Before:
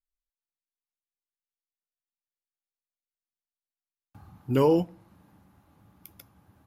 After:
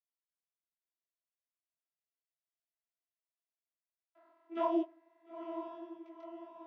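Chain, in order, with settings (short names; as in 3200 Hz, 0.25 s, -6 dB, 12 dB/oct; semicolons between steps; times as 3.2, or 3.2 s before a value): three-band isolator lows -20 dB, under 490 Hz, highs -21 dB, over 3600 Hz; vocoder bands 16, saw 333 Hz; on a send: diffused feedback echo 0.946 s, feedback 52%, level -8.5 dB; on the sum: detuned doubles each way 58 cents; gain +1 dB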